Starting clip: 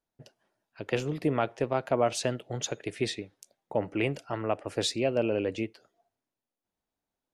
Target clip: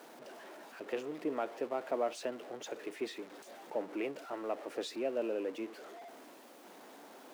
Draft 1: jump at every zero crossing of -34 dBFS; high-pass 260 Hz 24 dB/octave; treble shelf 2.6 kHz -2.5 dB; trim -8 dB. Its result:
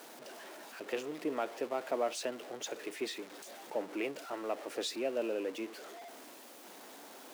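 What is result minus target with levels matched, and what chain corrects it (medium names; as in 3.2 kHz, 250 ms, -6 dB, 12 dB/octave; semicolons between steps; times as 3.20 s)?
4 kHz band +5.5 dB
jump at every zero crossing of -34 dBFS; high-pass 260 Hz 24 dB/octave; treble shelf 2.6 kHz -11 dB; trim -8 dB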